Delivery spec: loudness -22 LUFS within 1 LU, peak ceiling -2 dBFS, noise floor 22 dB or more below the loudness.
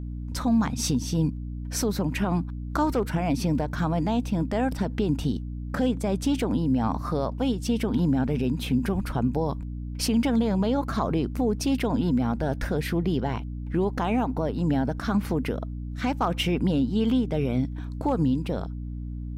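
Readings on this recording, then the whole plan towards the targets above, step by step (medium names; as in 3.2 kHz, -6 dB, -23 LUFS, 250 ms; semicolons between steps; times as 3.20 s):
hum 60 Hz; highest harmonic 300 Hz; hum level -31 dBFS; loudness -26.5 LUFS; peak level -14.0 dBFS; loudness target -22.0 LUFS
-> hum notches 60/120/180/240/300 Hz; trim +4.5 dB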